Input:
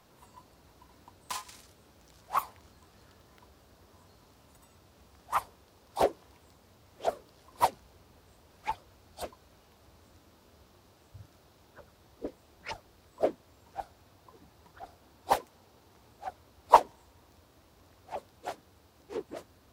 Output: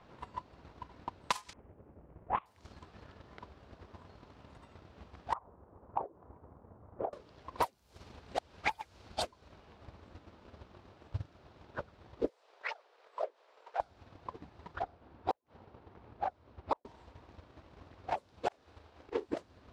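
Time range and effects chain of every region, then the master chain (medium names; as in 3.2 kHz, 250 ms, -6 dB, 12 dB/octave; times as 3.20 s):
1.53–2.46 s: CVSD coder 16 kbps + level-controlled noise filter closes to 600 Hz, open at -26 dBFS
5.33–7.13 s: low-pass 1.2 kHz 24 dB/octave + compression, threshold -39 dBFS
7.66–9.27 s: chunks repeated in reverse 364 ms, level -9 dB + treble shelf 2.2 kHz +5 dB
12.29–13.80 s: Chebyshev high-pass 450 Hz, order 4 + compression 2.5:1, threshold -48 dBFS
14.83–16.85 s: low-pass 1.8 kHz 6 dB/octave + inverted gate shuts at -23 dBFS, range -39 dB
18.48–19.28 s: peaking EQ 160 Hz -10 dB 1.1 oct + slow attack 131 ms + doubling 37 ms -5.5 dB
whole clip: level-controlled noise filter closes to 2.7 kHz, open at -31 dBFS; compression 10:1, threshold -43 dBFS; transient shaper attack +12 dB, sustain -4 dB; trim +3 dB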